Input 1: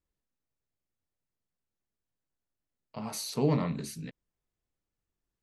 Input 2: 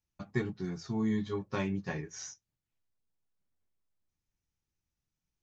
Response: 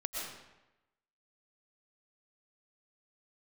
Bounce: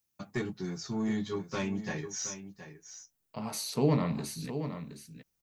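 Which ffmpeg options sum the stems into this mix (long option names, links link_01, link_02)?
-filter_complex "[0:a]adelay=400,volume=0.5dB,asplit=2[link_01][link_02];[link_02]volume=-9.5dB[link_03];[1:a]highpass=120,aemphasis=mode=production:type=50kf,asoftclip=type=tanh:threshold=-26dB,volume=1.5dB,asplit=2[link_04][link_05];[link_05]volume=-12dB[link_06];[link_03][link_06]amix=inputs=2:normalize=0,aecho=0:1:720:1[link_07];[link_01][link_04][link_07]amix=inputs=3:normalize=0"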